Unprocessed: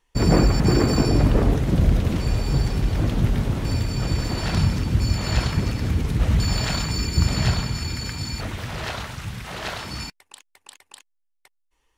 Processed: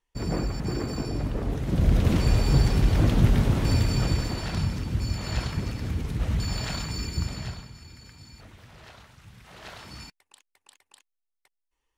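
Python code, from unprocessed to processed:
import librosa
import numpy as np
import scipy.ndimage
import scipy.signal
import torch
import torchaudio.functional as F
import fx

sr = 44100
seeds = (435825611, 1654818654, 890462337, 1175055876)

y = fx.gain(x, sr, db=fx.line((1.4, -11.5), (2.1, 1.0), (3.95, 1.0), (4.49, -7.0), (7.09, -7.0), (7.72, -19.0), (9.17, -19.0), (9.88, -10.5)))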